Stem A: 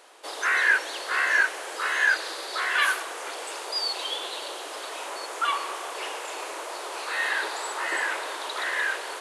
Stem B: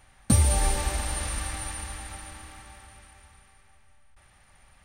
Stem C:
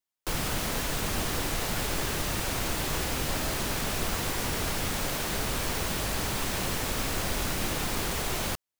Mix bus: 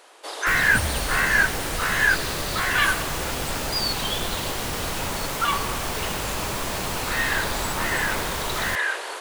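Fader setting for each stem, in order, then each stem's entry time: +2.0, -8.0, +1.0 dB; 0.00, 0.45, 0.20 s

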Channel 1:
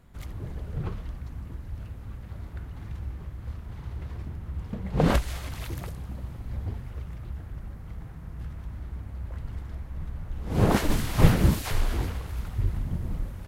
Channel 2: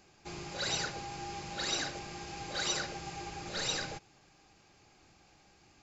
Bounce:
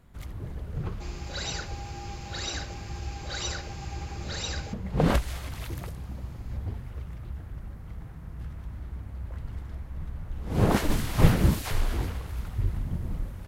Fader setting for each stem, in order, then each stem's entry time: -1.0, -0.5 dB; 0.00, 0.75 s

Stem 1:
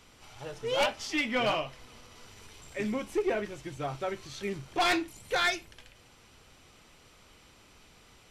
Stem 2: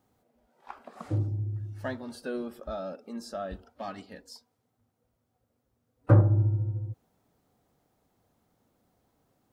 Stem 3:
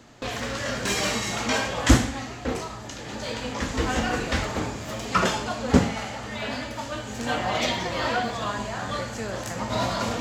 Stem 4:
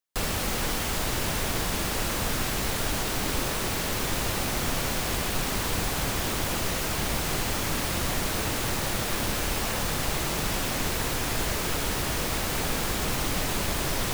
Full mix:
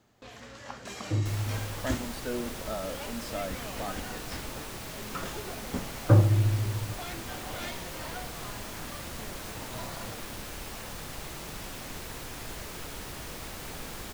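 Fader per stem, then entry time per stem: -16.0, 0.0, -16.5, -12.0 dB; 2.20, 0.00, 0.00, 1.10 s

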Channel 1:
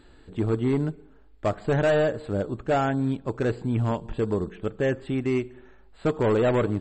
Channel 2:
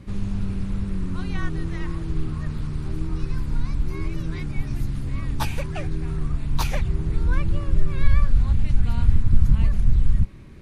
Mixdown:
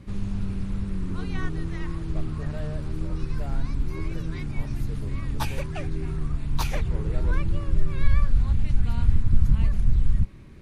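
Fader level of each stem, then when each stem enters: -19.0, -2.5 dB; 0.70, 0.00 s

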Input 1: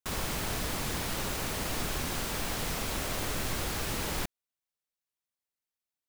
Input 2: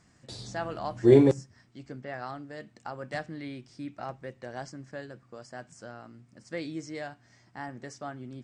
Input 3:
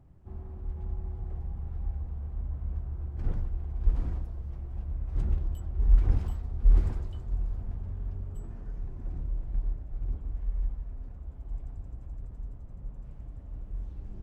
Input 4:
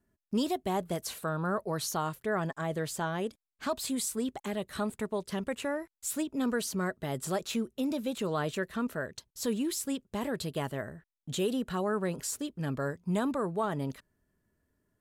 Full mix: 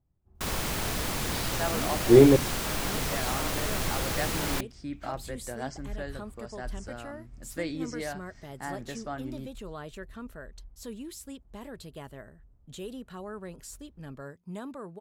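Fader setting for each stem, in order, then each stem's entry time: +2.5, +2.0, -18.5, -9.5 dB; 0.35, 1.05, 0.00, 1.40 s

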